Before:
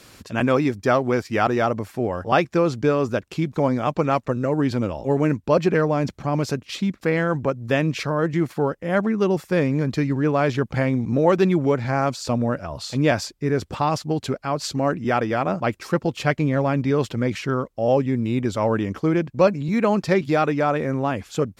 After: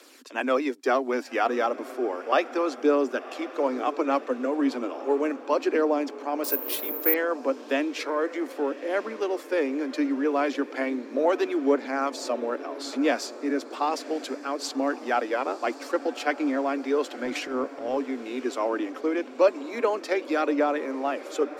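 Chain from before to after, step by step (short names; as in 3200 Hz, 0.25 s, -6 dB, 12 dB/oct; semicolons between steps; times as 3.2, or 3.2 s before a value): steep high-pass 250 Hz 96 dB/oct; 17.24–17.97 transient shaper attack -11 dB, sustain +6 dB; phaser 0.34 Hz, delay 4.3 ms, feedback 36%; diffused feedback echo 1.06 s, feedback 56%, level -15 dB; 6.44–7.14 careless resampling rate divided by 3×, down none, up zero stuff; gain -4.5 dB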